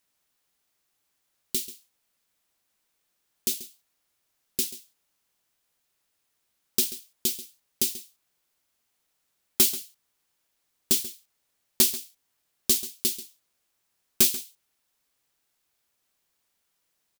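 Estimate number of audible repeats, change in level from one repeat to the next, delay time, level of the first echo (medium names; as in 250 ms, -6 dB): 1, no regular repeats, 136 ms, -15.5 dB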